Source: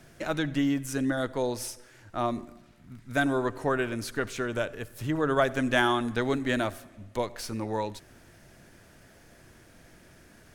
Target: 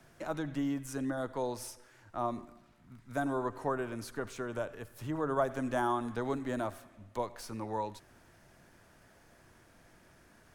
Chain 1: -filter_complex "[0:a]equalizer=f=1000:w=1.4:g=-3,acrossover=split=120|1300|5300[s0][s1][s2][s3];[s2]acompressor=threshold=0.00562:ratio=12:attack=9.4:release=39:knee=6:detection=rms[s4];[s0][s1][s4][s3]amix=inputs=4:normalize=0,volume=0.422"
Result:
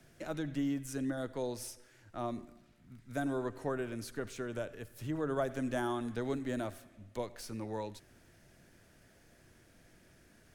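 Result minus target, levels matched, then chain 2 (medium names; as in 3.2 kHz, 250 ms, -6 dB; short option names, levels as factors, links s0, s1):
1 kHz band -5.0 dB
-filter_complex "[0:a]equalizer=f=1000:w=1.4:g=6.5,acrossover=split=120|1300|5300[s0][s1][s2][s3];[s2]acompressor=threshold=0.00562:ratio=12:attack=9.4:release=39:knee=6:detection=rms[s4];[s0][s1][s4][s3]amix=inputs=4:normalize=0,volume=0.422"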